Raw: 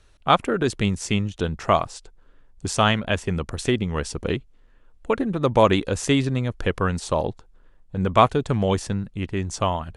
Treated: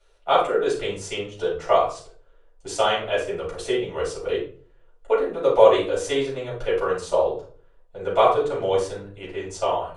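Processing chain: resonant low shelf 320 Hz -12 dB, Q 3; shoebox room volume 310 m³, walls furnished, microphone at 7 m; gain -13.5 dB

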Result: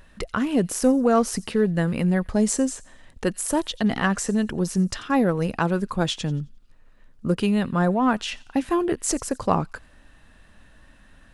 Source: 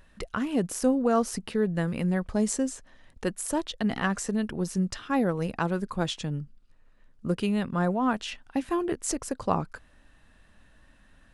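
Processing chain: in parallel at -10.5 dB: soft clip -23 dBFS, distortion -12 dB; on the sum: thin delay 88 ms, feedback 37%, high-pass 3100 Hz, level -19.5 dB; gain +3.5 dB

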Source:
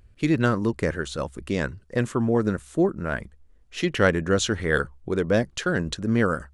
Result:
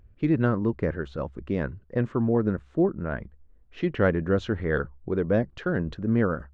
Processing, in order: tape spacing loss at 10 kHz 40 dB

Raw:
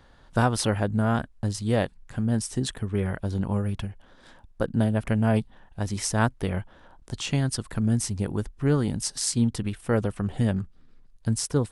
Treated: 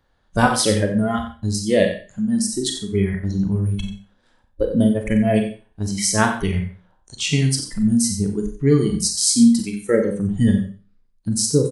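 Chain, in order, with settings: spectral noise reduction 19 dB; echo 90 ms -12 dB; Schroeder reverb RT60 0.35 s, combs from 30 ms, DRR 4.5 dB; gain +8 dB

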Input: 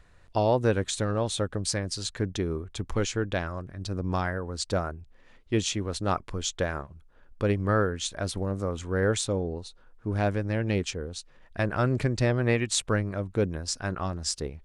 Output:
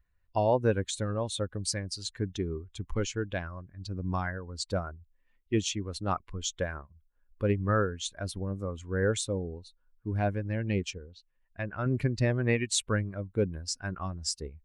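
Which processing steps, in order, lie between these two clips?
per-bin expansion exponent 1.5; 10.98–11.86 ladder low-pass 4800 Hz, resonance 20%

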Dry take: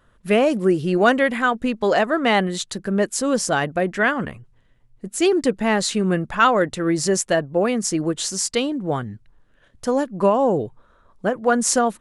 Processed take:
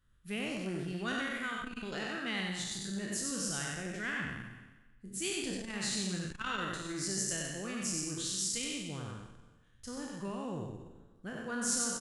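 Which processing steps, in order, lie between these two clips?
spectral trails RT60 1.18 s; passive tone stack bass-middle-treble 6-0-2; on a send: echo 93 ms -3.5 dB; on the sum: core saturation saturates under 930 Hz

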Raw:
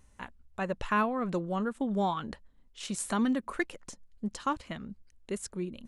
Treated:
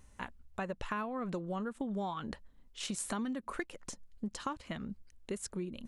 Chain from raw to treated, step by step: compressor 6:1, threshold -36 dBFS, peak gain reduction 12.5 dB; gain +1.5 dB

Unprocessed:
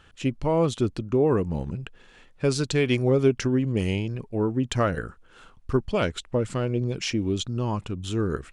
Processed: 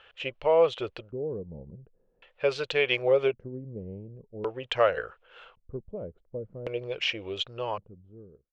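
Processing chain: ending faded out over 0.92 s; resonant low shelf 360 Hz -12.5 dB, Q 3; LFO low-pass square 0.45 Hz 220–2900 Hz; gain -3 dB

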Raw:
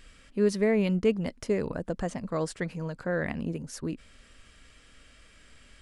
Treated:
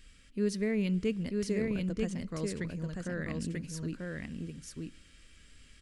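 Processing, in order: bell 780 Hz -13.5 dB 1.6 oct; echo 0.939 s -3 dB; on a send at -22.5 dB: reverb, pre-delay 3 ms; on the sum: gain -2.5 dB

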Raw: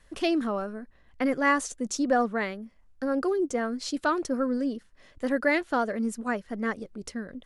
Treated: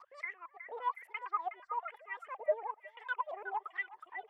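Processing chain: local time reversal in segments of 0.198 s; speed mistake 45 rpm record played at 78 rpm; dynamic EQ 4500 Hz, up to -5 dB, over -44 dBFS, Q 0.75; wah 1.1 Hz 610–2100 Hz, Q 21; delay with a stepping band-pass 0.367 s, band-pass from 1500 Hz, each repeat 0.7 oct, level -7 dB; gain +5.5 dB

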